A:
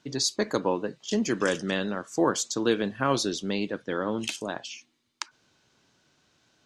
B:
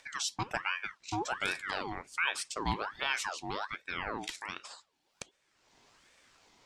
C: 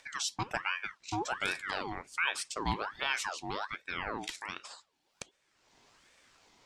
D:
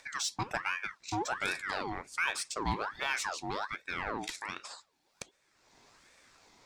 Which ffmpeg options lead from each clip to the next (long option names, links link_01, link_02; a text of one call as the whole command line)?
ffmpeg -i in.wav -af "acompressor=mode=upward:threshold=-44dB:ratio=2.5,aeval=exprs='val(0)*sin(2*PI*1300*n/s+1300*0.6/1.3*sin(2*PI*1.3*n/s))':channel_layout=same,volume=-5.5dB" out.wav
ffmpeg -i in.wav -af anull out.wav
ffmpeg -i in.wav -filter_complex "[0:a]equalizer=frequency=3000:width=6.2:gain=-7,asplit=2[link_01][link_02];[link_02]asoftclip=type=tanh:threshold=-34dB,volume=-3dB[link_03];[link_01][link_03]amix=inputs=2:normalize=0,volume=-2dB" out.wav